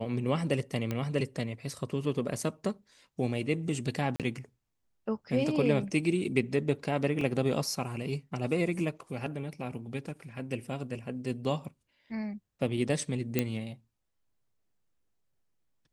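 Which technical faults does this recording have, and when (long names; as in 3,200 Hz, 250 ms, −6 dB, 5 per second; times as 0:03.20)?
0:00.91: click −19 dBFS
0:04.16–0:04.20: drop-out 37 ms
0:07.21: drop-out 2.7 ms
0:13.39: click −12 dBFS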